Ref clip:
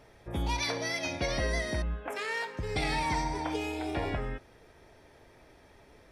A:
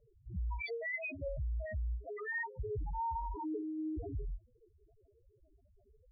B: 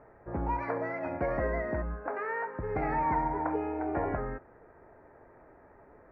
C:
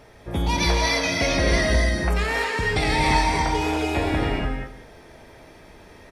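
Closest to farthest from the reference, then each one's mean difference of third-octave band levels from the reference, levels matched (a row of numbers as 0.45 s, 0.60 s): C, B, A; 4.0 dB, 9.0 dB, 24.0 dB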